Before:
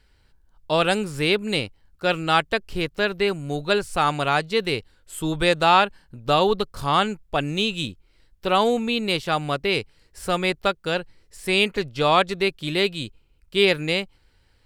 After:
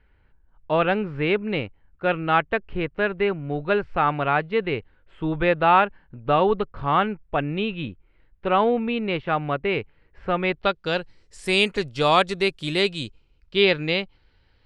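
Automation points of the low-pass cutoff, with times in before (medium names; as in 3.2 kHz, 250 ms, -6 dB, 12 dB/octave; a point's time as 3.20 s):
low-pass 24 dB/octave
10.39 s 2.5 kHz
10.76 s 4.8 kHz
11.51 s 10 kHz
12.75 s 10 kHz
13.66 s 4.4 kHz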